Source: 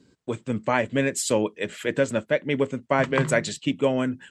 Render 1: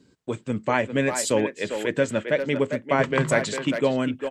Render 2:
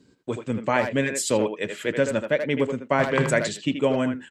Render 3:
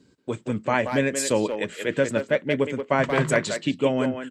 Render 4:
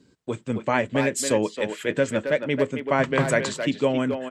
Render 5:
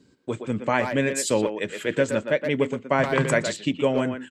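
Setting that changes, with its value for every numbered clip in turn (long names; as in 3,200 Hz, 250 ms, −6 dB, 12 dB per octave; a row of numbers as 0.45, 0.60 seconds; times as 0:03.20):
far-end echo of a speakerphone, delay time: 400, 80, 180, 270, 120 milliseconds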